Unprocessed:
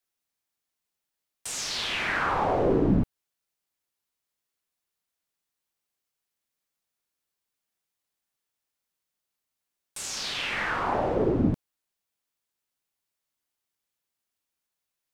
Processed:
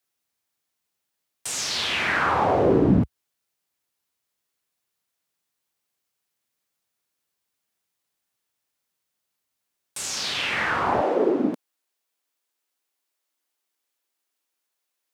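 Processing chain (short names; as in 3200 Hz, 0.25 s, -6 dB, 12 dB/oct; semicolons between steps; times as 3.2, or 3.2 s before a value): HPF 63 Hz 24 dB/oct, from 11.01 s 260 Hz; gain +4.5 dB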